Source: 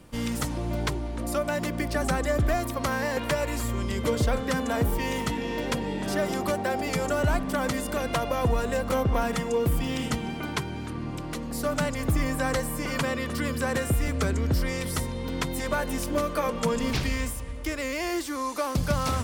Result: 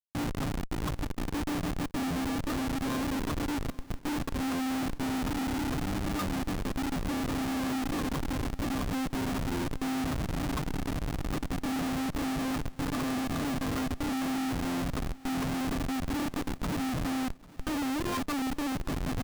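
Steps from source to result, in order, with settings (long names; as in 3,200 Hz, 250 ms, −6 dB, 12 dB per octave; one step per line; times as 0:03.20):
dynamic equaliser 410 Hz, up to +8 dB, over −49 dBFS, Q 5.9
comb filter 6.5 ms, depth 86%
in parallel at −1.5 dB: brickwall limiter −18.5 dBFS, peak gain reduction 9 dB
on the sum: speech leveller within 5 dB 0.5 s
formants moved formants −5 semitones
pair of resonant band-passes 550 Hz, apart 2.2 octaves
comparator with hysteresis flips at −31 dBFS
on a send: repeating echo 796 ms, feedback 52%, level −21.5 dB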